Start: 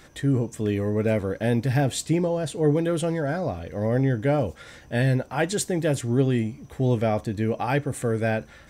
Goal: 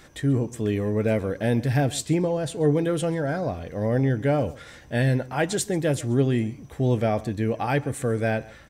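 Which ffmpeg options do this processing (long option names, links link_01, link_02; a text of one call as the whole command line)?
ffmpeg -i in.wav -filter_complex "[0:a]asplit=2[link_01][link_02];[link_02]adelay=134.1,volume=-20dB,highshelf=frequency=4000:gain=-3.02[link_03];[link_01][link_03]amix=inputs=2:normalize=0" out.wav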